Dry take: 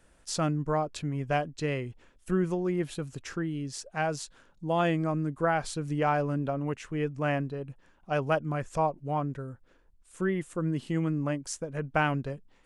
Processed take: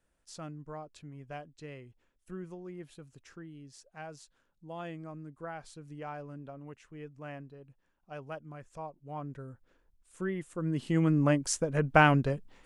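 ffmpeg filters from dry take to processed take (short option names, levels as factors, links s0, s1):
-af "volume=1.78,afade=t=in:st=8.99:d=0.48:silence=0.334965,afade=t=in:st=10.55:d=0.74:silence=0.298538"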